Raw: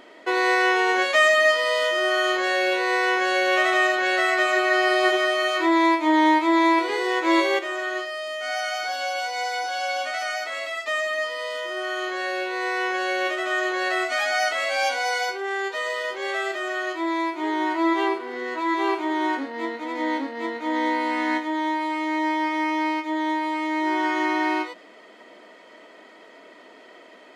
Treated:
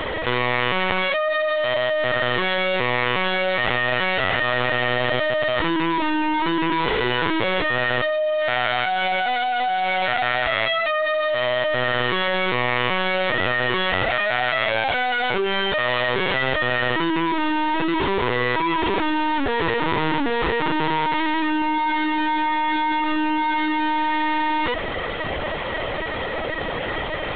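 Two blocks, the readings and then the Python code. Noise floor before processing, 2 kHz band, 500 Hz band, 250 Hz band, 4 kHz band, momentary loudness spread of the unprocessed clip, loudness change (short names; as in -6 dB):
-48 dBFS, +1.5 dB, +2.0 dB, +0.5 dB, +4.0 dB, 9 LU, +1.5 dB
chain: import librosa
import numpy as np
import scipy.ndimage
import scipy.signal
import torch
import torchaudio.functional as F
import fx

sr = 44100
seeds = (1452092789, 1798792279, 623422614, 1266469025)

y = fx.fuzz(x, sr, gain_db=47.0, gate_db=-54.0)
y = fx.lpc_vocoder(y, sr, seeds[0], excitation='pitch_kept', order=16)
y = F.gain(torch.from_numpy(y), -7.0).numpy()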